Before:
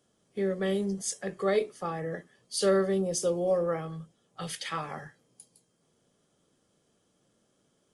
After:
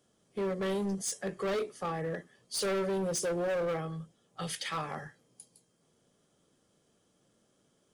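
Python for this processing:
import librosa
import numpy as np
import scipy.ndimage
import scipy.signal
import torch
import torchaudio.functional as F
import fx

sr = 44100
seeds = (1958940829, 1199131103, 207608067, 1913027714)

y = np.clip(x, -10.0 ** (-29.0 / 20.0), 10.0 ** (-29.0 / 20.0))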